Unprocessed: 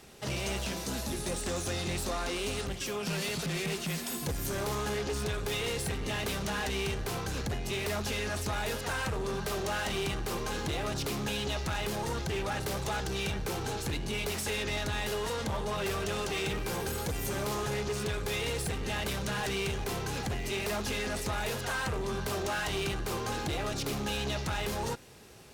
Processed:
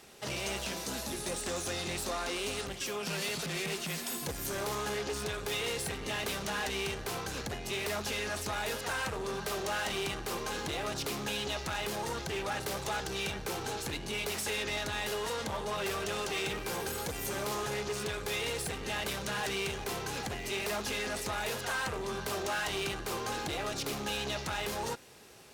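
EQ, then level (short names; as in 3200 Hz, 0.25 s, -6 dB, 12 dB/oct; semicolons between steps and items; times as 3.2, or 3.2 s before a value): low shelf 210 Hz -9.5 dB; 0.0 dB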